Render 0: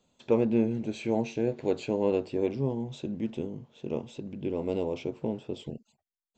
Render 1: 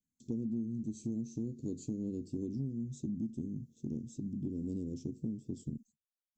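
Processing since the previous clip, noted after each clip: gate with hold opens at -48 dBFS; Chebyshev band-stop 270–6300 Hz, order 3; compressor 6:1, threshold -37 dBFS, peak gain reduction 14 dB; gain +3 dB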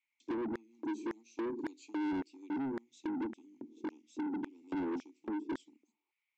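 vowel filter u; LFO high-pass square 1.8 Hz 380–1800 Hz; overdrive pedal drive 31 dB, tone 2900 Hz, clips at -34 dBFS; gain +5 dB

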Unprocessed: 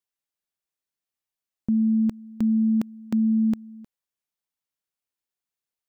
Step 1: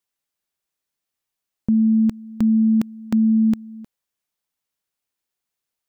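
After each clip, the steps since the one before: dynamic EQ 570 Hz, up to -5 dB, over -41 dBFS, Q 0.76; gain +6 dB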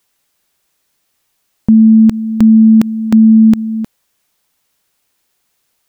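maximiser +20 dB; gain -1 dB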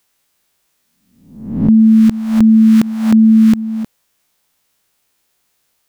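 spectral swells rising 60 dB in 0.71 s; gain -2 dB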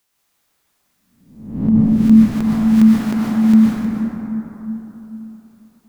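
plate-style reverb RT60 3.7 s, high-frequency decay 0.3×, pre-delay 0.11 s, DRR -6 dB; gain -6 dB

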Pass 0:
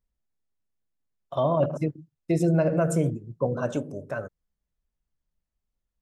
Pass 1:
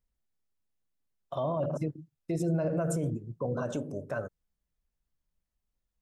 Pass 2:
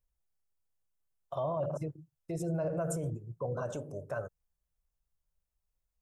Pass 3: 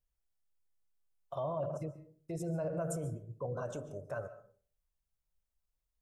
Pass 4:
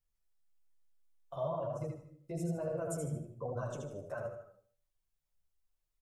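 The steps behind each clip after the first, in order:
dynamic EQ 2200 Hz, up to -5 dB, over -49 dBFS, Q 1.9; limiter -21.5 dBFS, peak gain reduction 9 dB; gain -1 dB
ten-band EQ 250 Hz -12 dB, 2000 Hz -5 dB, 4000 Hz -6 dB
reverb RT60 0.45 s, pre-delay 0.1 s, DRR 14.5 dB; gain -3 dB
on a send: feedback echo 77 ms, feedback 33%, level -4 dB; on the sum: chorus voices 2, 1.1 Hz, delay 11 ms, depth 3 ms; gain +1.5 dB

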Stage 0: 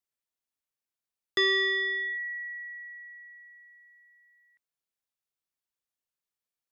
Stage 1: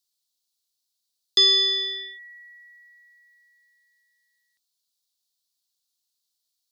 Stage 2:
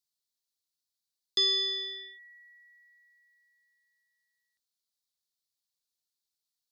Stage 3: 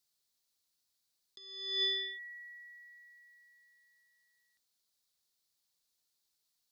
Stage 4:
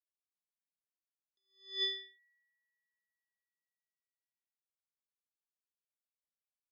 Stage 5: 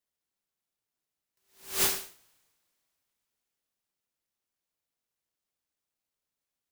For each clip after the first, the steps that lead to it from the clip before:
resonant high shelf 2900 Hz +13 dB, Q 3; gain -2 dB
low shelf 240 Hz +6 dB; gain -9 dB
negative-ratio compressor -36 dBFS, ratio -0.5
upward expander 2.5:1, over -52 dBFS; gain -1 dB
noise-modulated delay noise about 4900 Hz, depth 0.23 ms; gain +8.5 dB

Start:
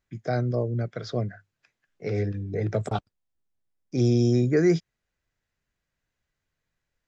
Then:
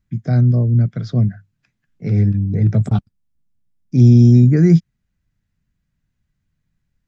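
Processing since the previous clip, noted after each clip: resonant low shelf 300 Hz +13 dB, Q 1.5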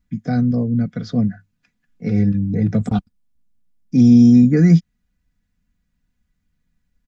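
comb 4.1 ms, depth 65%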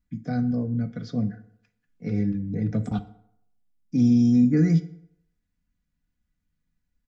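FDN reverb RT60 0.72 s, low-frequency decay 0.85×, high-frequency decay 0.65×, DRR 10 dB; gain -8 dB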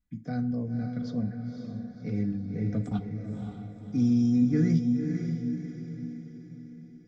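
diffused feedback echo 0.533 s, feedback 48%, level -5.5 dB; gain -5 dB

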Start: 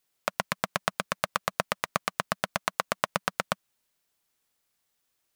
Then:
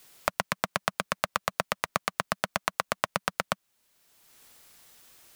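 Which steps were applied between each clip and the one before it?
three-band squash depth 70%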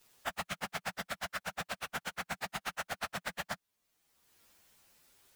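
inharmonic rescaling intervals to 115%; gain -2.5 dB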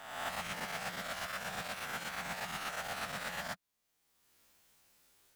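spectral swells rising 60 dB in 1.03 s; gain -5 dB

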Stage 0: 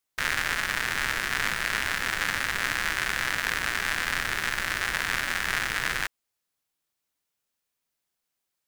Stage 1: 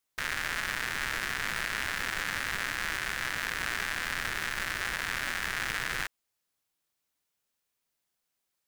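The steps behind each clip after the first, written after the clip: limiter -16.5 dBFS, peak gain reduction 7.5 dB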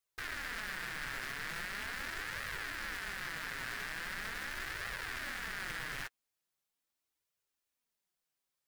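flange 0.41 Hz, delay 1.5 ms, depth 6.2 ms, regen -20%; soft clip -29 dBFS, distortion -12 dB; gain -2 dB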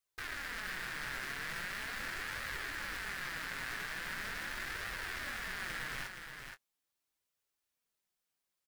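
doubler 22 ms -12 dB; on a send: echo 0.473 s -6.5 dB; on the sum: gain -1 dB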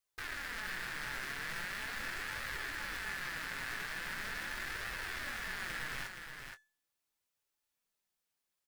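resonator 870 Hz, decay 0.37 s, mix 60%; gain +7.5 dB

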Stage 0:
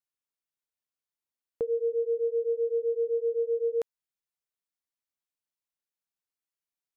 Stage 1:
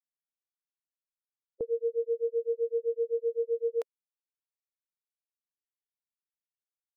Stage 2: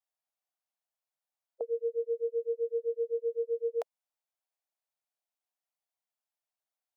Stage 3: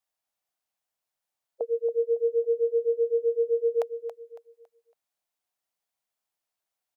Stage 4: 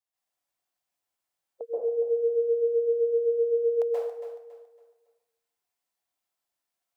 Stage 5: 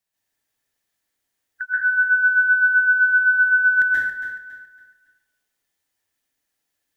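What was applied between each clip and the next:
per-bin expansion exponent 3
resonant high-pass 690 Hz, resonance Q 3.7
feedback echo 0.278 s, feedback 33%, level -10 dB; gain +5 dB
plate-style reverb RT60 0.74 s, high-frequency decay 0.85×, pre-delay 0.12 s, DRR -8 dB; gain -7.5 dB
band-swap scrambler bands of 1000 Hz; gain +8 dB

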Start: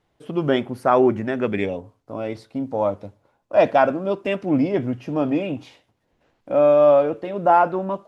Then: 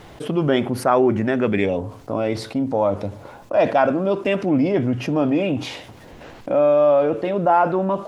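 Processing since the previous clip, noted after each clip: fast leveller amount 50%; gain -2.5 dB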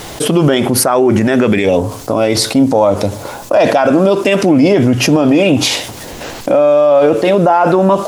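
tone controls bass -3 dB, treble +13 dB; maximiser +15 dB; gain -1 dB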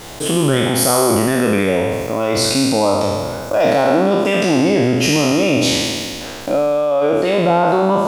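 spectral trails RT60 2.14 s; gain -8 dB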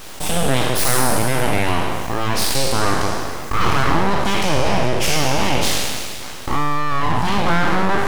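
full-wave rectifier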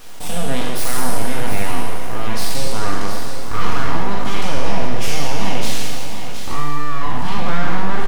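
flange 0.6 Hz, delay 8.1 ms, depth 5.6 ms, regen -66%; echo 0.715 s -9 dB; on a send at -6.5 dB: reverb RT60 0.60 s, pre-delay 4 ms; on the sum: gain -2 dB

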